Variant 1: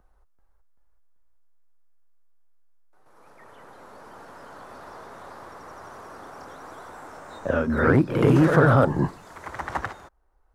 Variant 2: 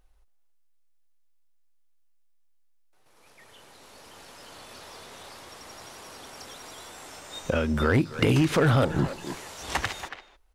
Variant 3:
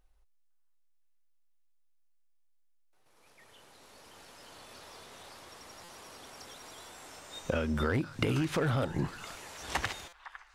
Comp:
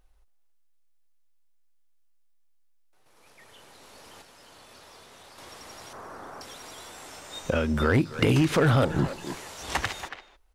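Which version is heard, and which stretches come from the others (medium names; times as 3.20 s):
2
4.22–5.38 s: from 3
5.93–6.41 s: from 1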